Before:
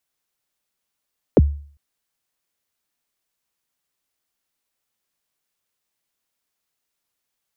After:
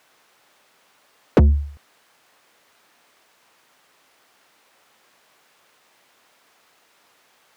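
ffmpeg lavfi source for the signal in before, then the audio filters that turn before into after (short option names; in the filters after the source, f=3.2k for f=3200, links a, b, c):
-f lavfi -i "aevalsrc='0.531*pow(10,-3*t/0.48)*sin(2*PI*(600*0.032/log(72/600)*(exp(log(72/600)*min(t,0.032)/0.032)-1)+72*max(t-0.032,0)))':d=0.4:s=44100"
-filter_complex "[0:a]asplit=2[a][b];[b]highpass=f=720:p=1,volume=39dB,asoftclip=type=tanh:threshold=-5.5dB[c];[a][c]amix=inputs=2:normalize=0,lowpass=f=1.1k:p=1,volume=-6dB"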